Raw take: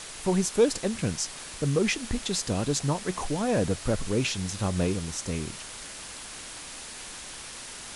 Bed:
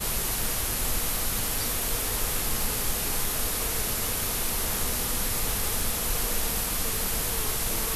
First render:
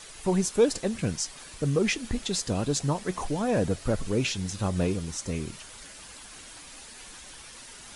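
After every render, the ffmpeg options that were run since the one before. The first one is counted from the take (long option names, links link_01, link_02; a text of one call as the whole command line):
ffmpeg -i in.wav -af "afftdn=noise_reduction=8:noise_floor=-42" out.wav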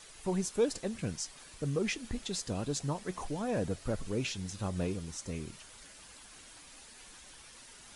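ffmpeg -i in.wav -af "volume=-7.5dB" out.wav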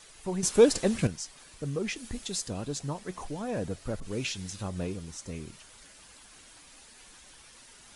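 ffmpeg -i in.wav -filter_complex "[0:a]asettb=1/sr,asplit=3[link_01][link_02][link_03];[link_01]atrim=end=1.964[link_04];[link_02]atrim=start=1.96:end=2.48,asetpts=PTS-STARTPTS,afade=type=in:duration=0.004:curve=qsin,afade=type=out:start_time=0.516:duration=0.004:curve=qsin,highshelf=frequency=6200:gain=9[link_05];[link_03]atrim=start=2.476[link_06];[link_04][link_05]acrossfade=duration=0.004:curve1=hsin:curve2=qsin[link_07];[link_07][link_06]acrossfade=duration=0.004:curve1=qsin:curve2=hsin,asettb=1/sr,asplit=3[link_08][link_09][link_10];[link_08]atrim=end=4.004[link_11];[link_09]atrim=start=4:end=4.63,asetpts=PTS-STARTPTS,afade=type=in:duration=0.004:curve=qsin,afade=type=out:start_time=0.626:duration=0.004:curve=qsin,adynamicequalizer=threshold=0.00224:dfrequency=1500:dqfactor=0.7:tfrequency=1500:tqfactor=0.7:attack=5:release=100:ratio=0.375:range=2:mode=boostabove:tftype=highshelf[link_12];[link_10]atrim=start=4.626[link_13];[link_11][link_12]acrossfade=duration=0.004:curve1=hsin:curve2=qsin[link_14];[link_14][link_13]acrossfade=duration=0.004:curve1=qsin:curve2=hsin,asplit=3[link_15][link_16][link_17];[link_15]atrim=end=0.432[link_18];[link_16]atrim=start=0.428:end=1.072,asetpts=PTS-STARTPTS,volume=10dB[link_19];[link_17]atrim=start=1.068[link_20];[link_18][link_19]acrossfade=duration=0.004:curve1=hsin:curve2=hsin[link_21];[link_21][link_20]acrossfade=duration=0.004:curve1=hsin:curve2=hsin" out.wav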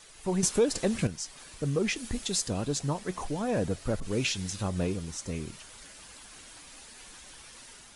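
ffmpeg -i in.wav -af "alimiter=limit=-19.5dB:level=0:latency=1:release=363,dynaudnorm=framelen=100:gausssize=5:maxgain=4dB" out.wav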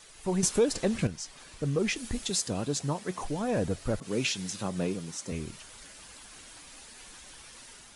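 ffmpeg -i in.wav -filter_complex "[0:a]asettb=1/sr,asplit=3[link_01][link_02][link_03];[link_01]atrim=end=0.754[link_04];[link_02]atrim=start=0.75:end=1.79,asetpts=PTS-STARTPTS,afade=type=in:duration=0.004:curve=qsin,afade=type=out:start_time=1.036:duration=0.004:curve=qsin,highshelf=frequency=8700:gain=-7.5[link_05];[link_03]atrim=start=1.786[link_06];[link_04][link_05]acrossfade=duration=0.004:curve1=hsin:curve2=qsin[link_07];[link_07][link_06]acrossfade=duration=0.004:curve1=qsin:curve2=hsin,asettb=1/sr,asplit=3[link_08][link_09][link_10];[link_08]atrim=end=2.304[link_11];[link_09]atrim=start=2.3:end=3.23,asetpts=PTS-STARTPTS,afade=type=in:duration=0.004:curve=qsin,afade=type=out:start_time=0.926:duration=0.004:curve=qsin,highpass=100[link_12];[link_10]atrim=start=3.226[link_13];[link_11][link_12]acrossfade=duration=0.004:curve1=hsin:curve2=qsin[link_14];[link_14][link_13]acrossfade=duration=0.004:curve1=qsin:curve2=hsin,asettb=1/sr,asplit=3[link_15][link_16][link_17];[link_15]atrim=end=3.994[link_18];[link_16]atrim=start=3.99:end=5.32,asetpts=PTS-STARTPTS,afade=type=in:duration=0.004:curve=qsin,afade=type=out:start_time=1.326:duration=0.004:curve=qsin,highpass=frequency=130:width=0.5412,highpass=frequency=130:width=1.3066[link_19];[link_17]atrim=start=5.316[link_20];[link_18][link_19]acrossfade=duration=0.004:curve1=hsin:curve2=qsin[link_21];[link_21][link_20]acrossfade=duration=0.004:curve1=qsin:curve2=hsin" out.wav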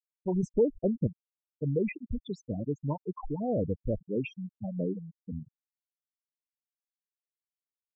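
ffmpeg -i in.wav -af "afftfilt=real='re*gte(hypot(re,im),0.1)':imag='im*gte(hypot(re,im),0.1)':win_size=1024:overlap=0.75,lowpass=1900" out.wav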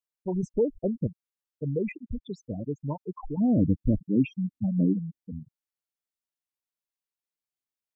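ffmpeg -i in.wav -filter_complex "[0:a]asplit=3[link_01][link_02][link_03];[link_01]afade=type=out:start_time=1.89:duration=0.02[link_04];[link_02]adynamicsmooth=sensitivity=2:basefreq=5600,afade=type=in:start_time=1.89:duration=0.02,afade=type=out:start_time=2.32:duration=0.02[link_05];[link_03]afade=type=in:start_time=2.32:duration=0.02[link_06];[link_04][link_05][link_06]amix=inputs=3:normalize=0,asettb=1/sr,asplit=3[link_07][link_08][link_09];[link_07]atrim=end=3.374[link_10];[link_08]atrim=start=3.37:end=5.19,asetpts=PTS-STARTPTS,afade=type=in:duration=0.004:curve=qsin,afade=type=out:start_time=1.816:duration=0.004:curve=qsin,lowshelf=frequency=360:width_type=q:width=3:gain=7[link_11];[link_09]atrim=start=5.186[link_12];[link_10][link_11]acrossfade=duration=0.004:curve1=hsin:curve2=qsin[link_13];[link_13][link_12]acrossfade=duration=0.004:curve1=qsin:curve2=hsin" out.wav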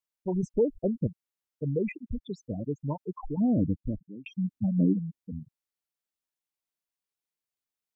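ffmpeg -i in.wav -filter_complex "[0:a]asplit=2[link_01][link_02];[link_01]atrim=end=4.26,asetpts=PTS-STARTPTS,afade=type=out:start_time=3.32:duration=0.94[link_03];[link_02]atrim=start=4.26,asetpts=PTS-STARTPTS,afade=type=in:duration=0.004:curve=hsin[link_04];[link_03][link_04]concat=n=2:v=0:a=1" out.wav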